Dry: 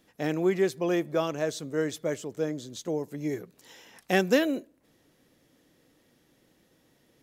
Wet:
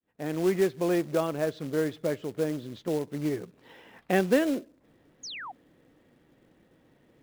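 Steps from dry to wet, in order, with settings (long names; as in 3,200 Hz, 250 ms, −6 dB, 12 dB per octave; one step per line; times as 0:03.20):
fade in at the beginning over 0.53 s
in parallel at −3 dB: downward compressor 10 to 1, threshold −34 dBFS, peak gain reduction 17.5 dB
on the sum: high-frequency loss of the air 400 metres
floating-point word with a short mantissa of 2 bits
sound drawn into the spectrogram fall, 0:05.23–0:05.52, 690–7,000 Hz −39 dBFS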